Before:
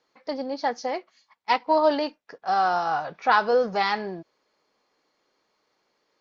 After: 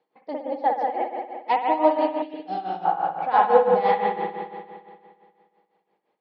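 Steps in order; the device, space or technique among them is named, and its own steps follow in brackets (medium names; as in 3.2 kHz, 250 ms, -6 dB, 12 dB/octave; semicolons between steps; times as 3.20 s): reverb removal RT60 1.5 s; combo amplifier with spring reverb and tremolo (spring tank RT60 2.1 s, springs 58 ms, chirp 65 ms, DRR -3.5 dB; tremolo 5.9 Hz, depth 73%; cabinet simulation 87–3500 Hz, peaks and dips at 180 Hz +9 dB, 330 Hz +5 dB, 470 Hz +6 dB, 790 Hz +10 dB, 1.4 kHz -6 dB); 2.22–2.85 s: FFT filter 340 Hz 0 dB, 1.1 kHz -15 dB, 3.1 kHz +3 dB; trim -4 dB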